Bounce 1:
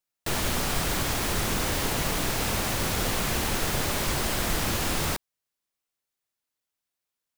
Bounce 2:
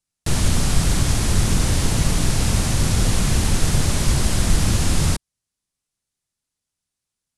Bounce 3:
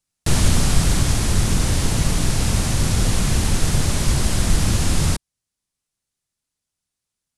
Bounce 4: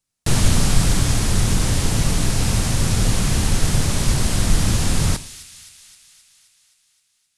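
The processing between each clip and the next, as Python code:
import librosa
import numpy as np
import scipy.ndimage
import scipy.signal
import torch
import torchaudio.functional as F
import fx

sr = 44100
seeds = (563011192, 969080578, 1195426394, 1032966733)

y1 = scipy.signal.sosfilt(scipy.signal.butter(6, 11000.0, 'lowpass', fs=sr, output='sos'), x)
y1 = fx.bass_treble(y1, sr, bass_db=14, treble_db=7)
y2 = fx.rider(y1, sr, range_db=10, speed_s=2.0)
y3 = fx.echo_wet_highpass(y2, sr, ms=262, feedback_pct=63, hz=2600.0, wet_db=-12)
y3 = fx.rev_double_slope(y3, sr, seeds[0], early_s=0.63, late_s=2.3, knee_db=-22, drr_db=13.0)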